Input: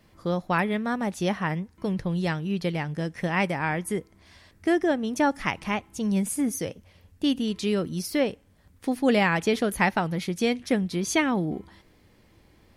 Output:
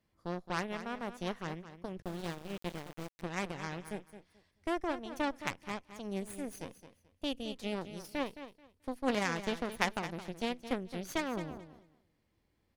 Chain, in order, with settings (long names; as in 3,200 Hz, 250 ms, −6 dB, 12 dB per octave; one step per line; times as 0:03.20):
harmonic generator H 3 −11 dB, 8 −27 dB, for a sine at −8 dBFS
repeating echo 217 ms, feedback 20%, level −12 dB
0:02.02–0:03.22: centre clipping without the shift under −40.5 dBFS
level −3 dB